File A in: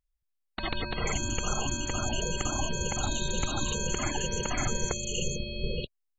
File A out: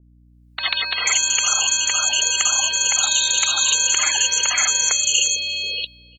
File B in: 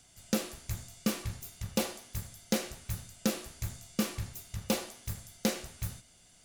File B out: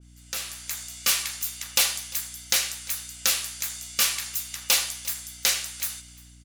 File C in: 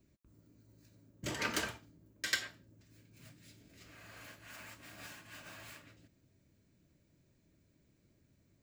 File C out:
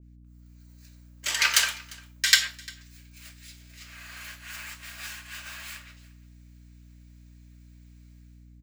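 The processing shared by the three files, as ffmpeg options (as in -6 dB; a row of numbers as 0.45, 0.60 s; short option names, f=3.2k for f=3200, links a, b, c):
-af "highpass=1.4k,dynaudnorm=f=130:g=7:m=14dB,aeval=exprs='val(0)+0.00355*(sin(2*PI*60*n/s)+sin(2*PI*2*60*n/s)/2+sin(2*PI*3*60*n/s)/3+sin(2*PI*4*60*n/s)/4+sin(2*PI*5*60*n/s)/5)':c=same,aecho=1:1:349:0.0708,adynamicequalizer=threshold=0.0178:dfrequency=2200:dqfactor=0.7:tfrequency=2200:tqfactor=0.7:attack=5:release=100:ratio=0.375:range=2.5:mode=boostabove:tftype=highshelf,volume=-1dB"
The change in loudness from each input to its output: +15.0, +10.5, +15.0 LU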